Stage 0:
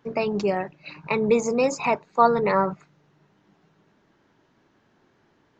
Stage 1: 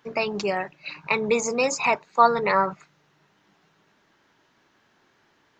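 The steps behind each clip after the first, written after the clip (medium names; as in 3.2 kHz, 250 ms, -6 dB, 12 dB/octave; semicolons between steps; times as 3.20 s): tilt shelf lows -6 dB, about 760 Hz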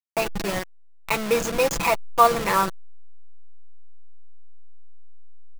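send-on-delta sampling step -21.5 dBFS; comb 6 ms, depth 51%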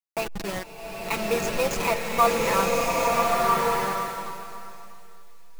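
feedback echo behind a high-pass 855 ms, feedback 33%, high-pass 3.6 kHz, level -18 dB; swelling reverb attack 1300 ms, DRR -3 dB; trim -4.5 dB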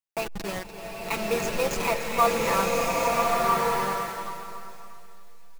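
delay 293 ms -12.5 dB; trim -1.5 dB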